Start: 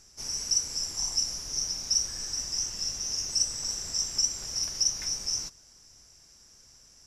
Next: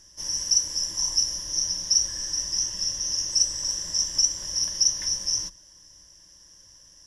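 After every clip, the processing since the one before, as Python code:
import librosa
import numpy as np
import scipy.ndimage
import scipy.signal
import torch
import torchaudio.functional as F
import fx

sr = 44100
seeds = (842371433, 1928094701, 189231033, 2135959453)

y = fx.ripple_eq(x, sr, per_octave=1.2, db=11)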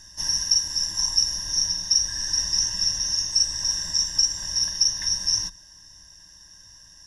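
y = x + 0.69 * np.pad(x, (int(1.1 * sr / 1000.0), 0))[:len(x)]
y = fx.rider(y, sr, range_db=10, speed_s=0.5)
y = fx.small_body(y, sr, hz=(1600.0, 3700.0), ring_ms=45, db=13)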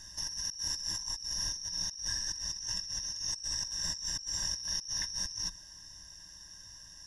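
y = fx.over_compress(x, sr, threshold_db=-31.0, ratio=-1.0)
y = y * 10.0 ** (-7.0 / 20.0)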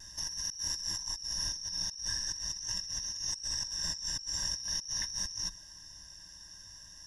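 y = fx.vibrato(x, sr, rate_hz=0.44, depth_cents=10.0)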